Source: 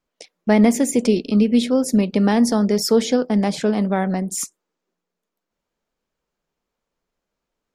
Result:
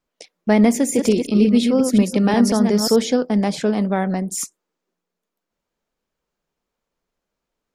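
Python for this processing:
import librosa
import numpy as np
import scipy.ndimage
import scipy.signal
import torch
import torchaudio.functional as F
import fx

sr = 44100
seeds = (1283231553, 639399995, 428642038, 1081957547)

y = fx.reverse_delay(x, sr, ms=179, wet_db=-5.0, at=(0.73, 2.96))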